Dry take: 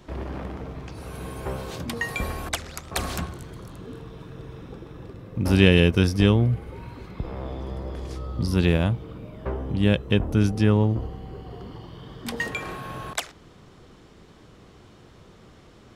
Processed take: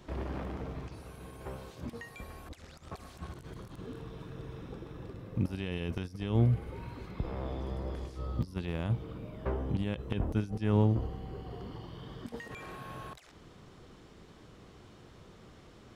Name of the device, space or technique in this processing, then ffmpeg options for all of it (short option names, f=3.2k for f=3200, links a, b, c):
de-esser from a sidechain: -filter_complex "[0:a]asplit=2[a][b];[b]highpass=f=4.9k:w=0.5412,highpass=f=4.9k:w=1.3066,apad=whole_len=703722[c];[a][c]sidechaincompress=threshold=-59dB:ratio=5:attack=2.8:release=31,volume=-4dB"